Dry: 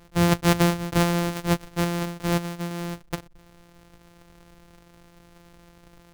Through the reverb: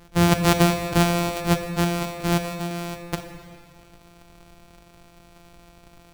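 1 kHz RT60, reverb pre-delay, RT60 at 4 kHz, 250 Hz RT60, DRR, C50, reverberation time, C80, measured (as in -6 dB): 2.0 s, 26 ms, 1.7 s, 1.9 s, 7.5 dB, 8.5 dB, 2.0 s, 9.5 dB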